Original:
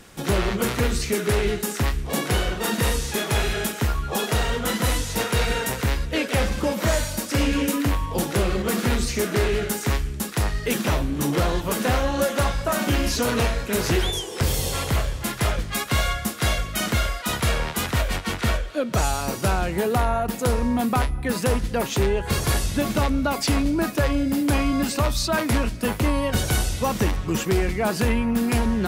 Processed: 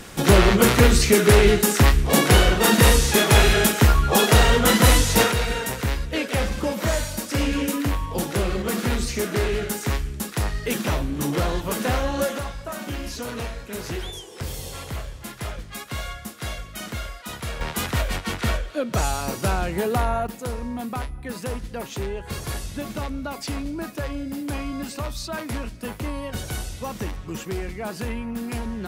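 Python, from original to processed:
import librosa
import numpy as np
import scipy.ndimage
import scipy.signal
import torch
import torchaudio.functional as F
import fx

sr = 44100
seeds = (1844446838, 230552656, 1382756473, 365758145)

y = fx.gain(x, sr, db=fx.steps((0.0, 7.5), (5.32, -1.5), (12.38, -9.0), (17.61, -1.0), (20.27, -8.0)))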